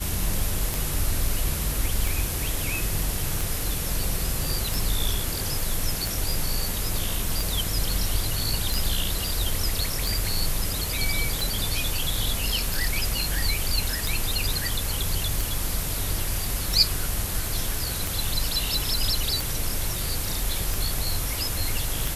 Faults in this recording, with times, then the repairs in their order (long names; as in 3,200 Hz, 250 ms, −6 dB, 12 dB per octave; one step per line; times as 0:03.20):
scratch tick 45 rpm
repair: click removal